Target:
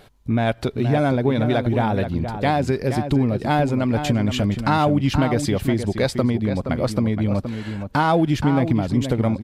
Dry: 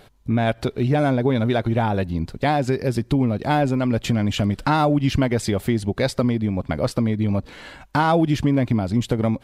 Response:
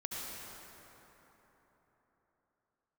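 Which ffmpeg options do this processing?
-filter_complex "[0:a]asplit=2[a][b];[b]adelay=472.3,volume=-8dB,highshelf=f=4k:g=-10.6[c];[a][c]amix=inputs=2:normalize=0"

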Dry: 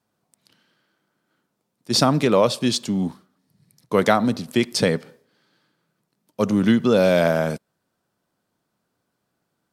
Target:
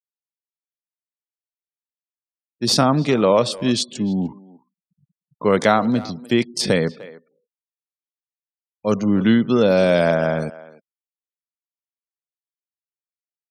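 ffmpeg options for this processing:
-filter_complex "[0:a]atempo=0.72,afftfilt=real='re*gte(hypot(re,im),0.0126)':imag='im*gte(hypot(re,im),0.0126)':win_size=1024:overlap=0.75,asplit=2[a][b];[b]adelay=300,highpass=300,lowpass=3.4k,asoftclip=type=hard:threshold=-11dB,volume=-18dB[c];[a][c]amix=inputs=2:normalize=0,volume=1dB"

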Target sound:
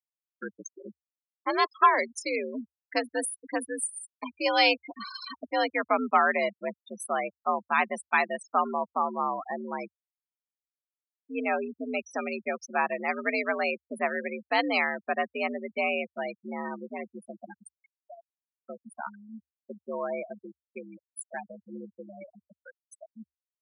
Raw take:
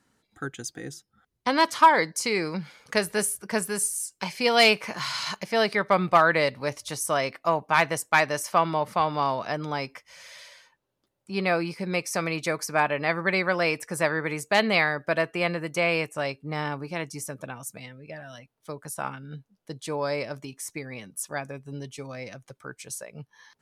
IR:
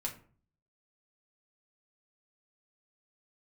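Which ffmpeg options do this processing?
-af "afftfilt=real='re*gte(hypot(re,im),0.0794)':imag='im*gte(hypot(re,im),0.0794)':win_size=1024:overlap=0.75,afreqshift=71,volume=-3.5dB"

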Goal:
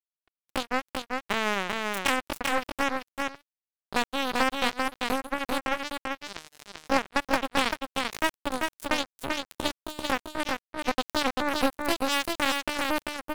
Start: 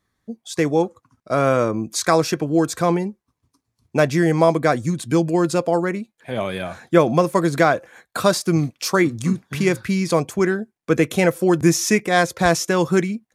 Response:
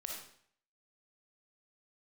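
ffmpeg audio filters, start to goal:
-filter_complex "[0:a]acompressor=threshold=-27dB:ratio=2,aeval=exprs='0.266*(cos(1*acos(clip(val(0)/0.266,-1,1)))-cos(1*PI/2))+0.00596*(cos(6*acos(clip(val(0)/0.266,-1,1)))-cos(6*PI/2))':c=same,asetrate=70004,aresample=44100,atempo=0.629961,acrusher=bits=2:mix=0:aa=0.5,asplit=2[a][b];[b]aecho=0:1:391:0.668[c];[a][c]amix=inputs=2:normalize=0"

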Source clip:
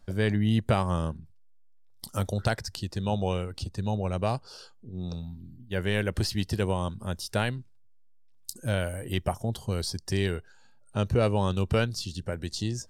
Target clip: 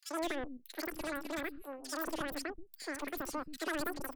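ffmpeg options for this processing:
-filter_complex "[0:a]aeval=exprs='(tanh(20*val(0)+0.75)-tanh(0.75))/20':c=same,asetrate=136710,aresample=44100,acrossover=split=250|2700[a][b][c];[b]adelay=80[d];[a]adelay=210[e];[e][d][c]amix=inputs=3:normalize=0,volume=-4.5dB"

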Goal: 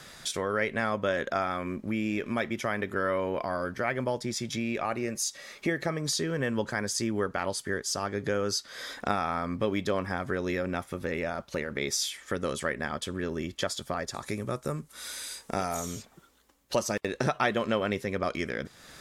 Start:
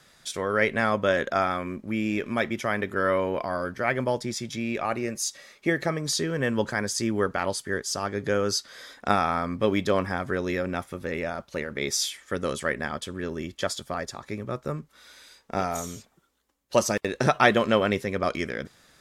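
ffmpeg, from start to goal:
-filter_complex "[0:a]asettb=1/sr,asplit=3[a][b][c];[a]atrim=end=14.144[d];[b]atrim=start=14.14:end=15.75,asetpts=PTS-STARTPTS,afade=t=in:d=0.004:c=qsin,afade=t=out:st=1.606:d=0.004:c=qsin,equalizer=f=9.6k:w=0.85:g=14[e];[c]atrim=start=15.746[f];[d][e]acrossfade=d=0.004:c1=hsin:c2=qsin[g];[g][f]acrossfade=d=0.004:c1=qsin:c2=hsin,acompressor=threshold=-46dB:ratio=2,volume=9dB"

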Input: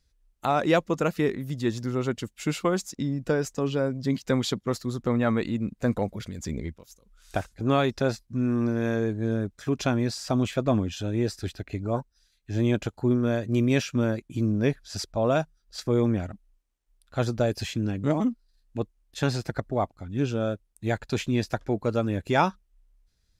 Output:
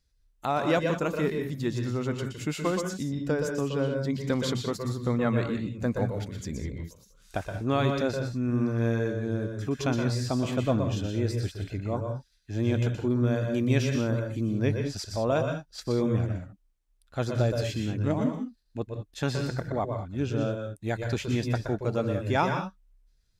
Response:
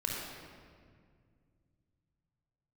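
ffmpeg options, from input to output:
-filter_complex "[0:a]asplit=2[a][b];[1:a]atrim=start_sample=2205,atrim=end_sample=3969,adelay=121[c];[b][c]afir=irnorm=-1:irlink=0,volume=-6dB[d];[a][d]amix=inputs=2:normalize=0,volume=-3.5dB"

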